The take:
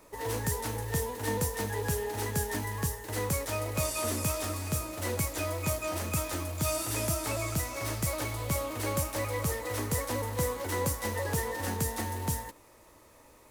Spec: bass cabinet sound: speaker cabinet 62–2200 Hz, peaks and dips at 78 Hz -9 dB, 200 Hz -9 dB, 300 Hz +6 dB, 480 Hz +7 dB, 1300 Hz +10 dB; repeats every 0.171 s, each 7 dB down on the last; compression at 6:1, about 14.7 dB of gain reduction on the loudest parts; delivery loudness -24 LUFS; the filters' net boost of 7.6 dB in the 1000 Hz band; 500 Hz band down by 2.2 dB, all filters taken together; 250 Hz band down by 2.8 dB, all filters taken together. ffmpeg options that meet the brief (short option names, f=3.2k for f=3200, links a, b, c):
-af "equalizer=f=250:t=o:g=-3.5,equalizer=f=500:t=o:g=-8.5,equalizer=f=1k:t=o:g=6,acompressor=threshold=-43dB:ratio=6,highpass=f=62:w=0.5412,highpass=f=62:w=1.3066,equalizer=f=78:t=q:w=4:g=-9,equalizer=f=200:t=q:w=4:g=-9,equalizer=f=300:t=q:w=4:g=6,equalizer=f=480:t=q:w=4:g=7,equalizer=f=1.3k:t=q:w=4:g=10,lowpass=f=2.2k:w=0.5412,lowpass=f=2.2k:w=1.3066,aecho=1:1:171|342|513|684|855:0.447|0.201|0.0905|0.0407|0.0183,volume=19.5dB"